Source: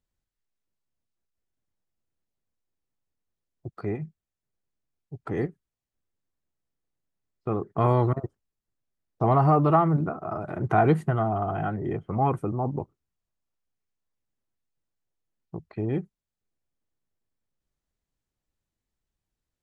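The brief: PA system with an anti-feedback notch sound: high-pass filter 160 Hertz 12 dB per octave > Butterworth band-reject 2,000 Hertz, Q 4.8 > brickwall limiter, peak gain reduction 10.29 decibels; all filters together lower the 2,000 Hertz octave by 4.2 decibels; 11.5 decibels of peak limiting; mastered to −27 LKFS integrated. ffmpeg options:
ffmpeg -i in.wav -af "equalizer=frequency=2000:width_type=o:gain=-6,alimiter=limit=-21dB:level=0:latency=1,highpass=160,asuperstop=centerf=2000:order=8:qfactor=4.8,volume=13dB,alimiter=limit=-17dB:level=0:latency=1" out.wav

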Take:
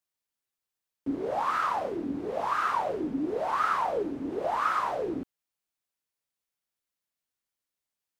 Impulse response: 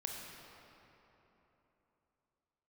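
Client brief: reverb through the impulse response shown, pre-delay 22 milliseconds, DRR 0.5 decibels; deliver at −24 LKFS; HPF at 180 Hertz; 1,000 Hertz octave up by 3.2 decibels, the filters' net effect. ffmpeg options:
-filter_complex "[0:a]highpass=180,equalizer=frequency=1000:width_type=o:gain=4,asplit=2[link_01][link_02];[1:a]atrim=start_sample=2205,adelay=22[link_03];[link_02][link_03]afir=irnorm=-1:irlink=0,volume=-0.5dB[link_04];[link_01][link_04]amix=inputs=2:normalize=0,volume=1dB"

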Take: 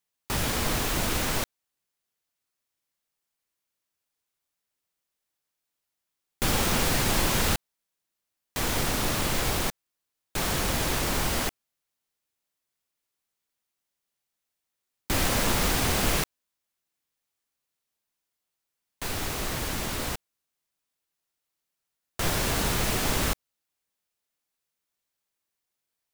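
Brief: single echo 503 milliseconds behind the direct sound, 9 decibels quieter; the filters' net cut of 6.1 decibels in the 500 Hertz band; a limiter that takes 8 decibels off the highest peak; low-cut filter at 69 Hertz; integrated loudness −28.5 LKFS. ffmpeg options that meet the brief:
ffmpeg -i in.wav -af "highpass=69,equalizer=frequency=500:width_type=o:gain=-8,alimiter=limit=-21.5dB:level=0:latency=1,aecho=1:1:503:0.355,volume=2.5dB" out.wav

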